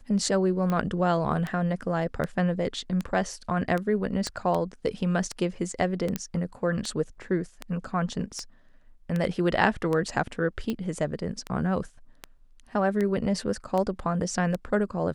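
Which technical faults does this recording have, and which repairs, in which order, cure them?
tick 78 rpm -17 dBFS
4.27 s: pop -17 dBFS
6.16 s: pop -13 dBFS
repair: de-click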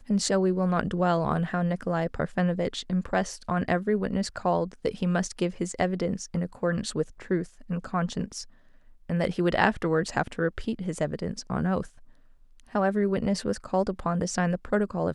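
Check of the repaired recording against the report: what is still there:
4.27 s: pop

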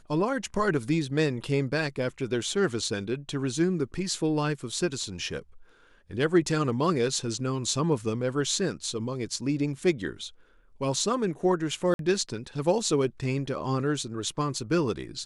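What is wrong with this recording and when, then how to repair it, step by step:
11.94–11.99 s: dropout 52 ms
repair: interpolate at 11.94 s, 52 ms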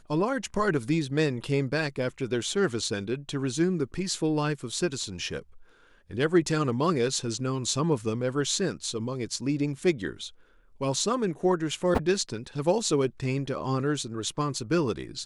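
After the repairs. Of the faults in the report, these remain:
nothing left

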